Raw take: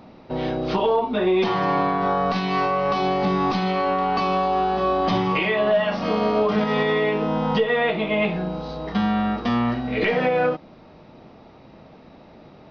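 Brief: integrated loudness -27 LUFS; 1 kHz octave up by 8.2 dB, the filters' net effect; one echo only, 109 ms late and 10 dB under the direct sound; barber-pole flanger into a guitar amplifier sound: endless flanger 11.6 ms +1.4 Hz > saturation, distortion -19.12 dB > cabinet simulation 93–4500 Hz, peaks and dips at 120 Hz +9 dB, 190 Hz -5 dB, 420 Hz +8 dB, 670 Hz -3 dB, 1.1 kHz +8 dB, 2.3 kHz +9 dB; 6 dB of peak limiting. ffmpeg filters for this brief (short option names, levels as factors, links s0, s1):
-filter_complex "[0:a]equalizer=f=1000:t=o:g=4.5,alimiter=limit=0.178:level=0:latency=1,aecho=1:1:109:0.316,asplit=2[s0][s1];[s1]adelay=11.6,afreqshift=1.4[s2];[s0][s2]amix=inputs=2:normalize=1,asoftclip=threshold=0.112,highpass=93,equalizer=f=120:t=q:w=4:g=9,equalizer=f=190:t=q:w=4:g=-5,equalizer=f=420:t=q:w=4:g=8,equalizer=f=670:t=q:w=4:g=-3,equalizer=f=1100:t=q:w=4:g=8,equalizer=f=2300:t=q:w=4:g=9,lowpass=f=4500:w=0.5412,lowpass=f=4500:w=1.3066,volume=0.668"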